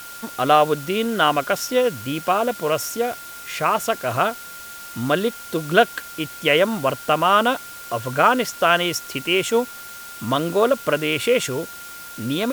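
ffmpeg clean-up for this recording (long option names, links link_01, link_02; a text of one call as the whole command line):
ffmpeg -i in.wav -af "bandreject=frequency=1400:width=30,afftdn=noise_reduction=28:noise_floor=-37" out.wav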